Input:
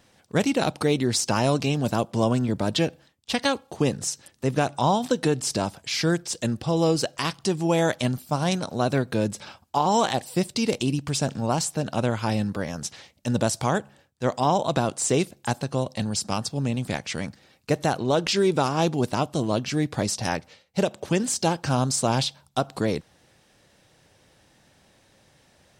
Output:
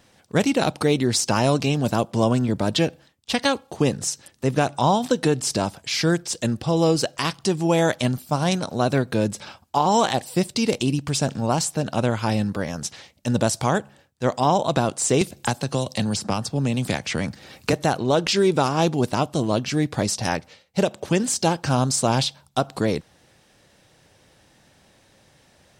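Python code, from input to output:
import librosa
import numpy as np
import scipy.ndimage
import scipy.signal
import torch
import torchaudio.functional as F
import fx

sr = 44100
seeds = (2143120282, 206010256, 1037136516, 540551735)

y = fx.band_squash(x, sr, depth_pct=100, at=(15.21, 17.73))
y = F.gain(torch.from_numpy(y), 2.5).numpy()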